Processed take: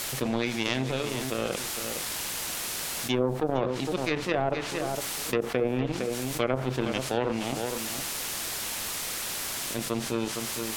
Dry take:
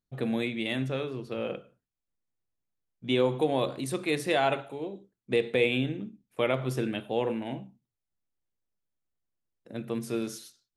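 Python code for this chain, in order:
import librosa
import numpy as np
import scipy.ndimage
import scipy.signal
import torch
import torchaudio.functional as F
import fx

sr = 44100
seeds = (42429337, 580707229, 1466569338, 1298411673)

p1 = scipy.signal.sosfilt(scipy.signal.cheby1(3, 1.0, 3800.0, 'lowpass', fs=sr, output='sos'), x)
p2 = fx.power_curve(p1, sr, exponent=2.0)
p3 = fx.quant_dither(p2, sr, seeds[0], bits=8, dither='triangular')
p4 = p2 + (p3 * librosa.db_to_amplitude(-5.5))
p5 = fx.env_lowpass_down(p4, sr, base_hz=780.0, full_db=-23.5)
p6 = p5 + fx.echo_single(p5, sr, ms=459, db=-15.0, dry=0)
y = fx.env_flatten(p6, sr, amount_pct=70)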